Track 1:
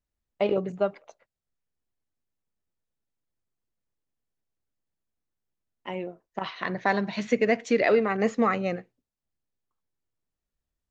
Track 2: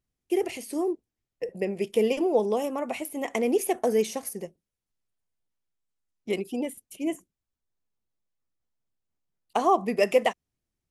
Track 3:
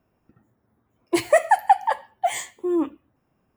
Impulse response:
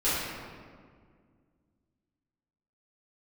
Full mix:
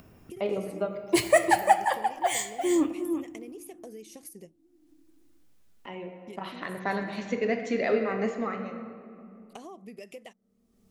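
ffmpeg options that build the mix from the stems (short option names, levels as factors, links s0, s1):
-filter_complex "[0:a]volume=0.422,afade=t=out:st=8.26:d=0.49:silence=0.251189,asplit=3[s0][s1][s2];[s1]volume=0.178[s3];[1:a]equalizer=f=970:w=0.67:g=-10.5,acompressor=threshold=0.0178:ratio=6,volume=0.447[s4];[2:a]equalizer=f=850:w=0.51:g=-6.5,volume=1.19,asplit=3[s5][s6][s7];[s6]volume=0.0794[s8];[s7]volume=0.447[s9];[s2]apad=whole_len=480709[s10];[s4][s10]sidechaincompress=threshold=0.0251:ratio=8:attack=16:release=870[s11];[3:a]atrim=start_sample=2205[s12];[s3][s8]amix=inputs=2:normalize=0[s13];[s13][s12]afir=irnorm=-1:irlink=0[s14];[s9]aecho=0:1:347:1[s15];[s0][s11][s5][s14][s15]amix=inputs=5:normalize=0,bandreject=f=880:w=28,acompressor=mode=upward:threshold=0.00891:ratio=2.5"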